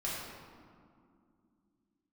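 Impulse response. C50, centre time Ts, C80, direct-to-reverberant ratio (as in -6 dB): -1.5 dB, 0.108 s, 0.5 dB, -8.0 dB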